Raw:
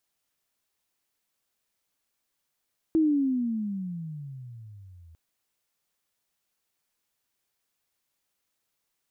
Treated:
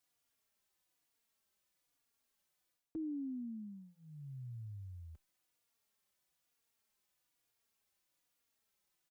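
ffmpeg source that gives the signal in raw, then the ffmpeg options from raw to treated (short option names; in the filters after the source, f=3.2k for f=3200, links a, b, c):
-f lavfi -i "aevalsrc='pow(10,(-18-30.5*t/2.2)/20)*sin(2*PI*327*2.2/(-24.5*log(2)/12)*(exp(-24.5*log(2)/12*t/2.2)-1))':d=2.2:s=44100"
-filter_complex "[0:a]areverse,acompressor=threshold=-36dB:ratio=5,areverse,asplit=2[a][b];[b]adelay=3.6,afreqshift=-1.1[c];[a][c]amix=inputs=2:normalize=1"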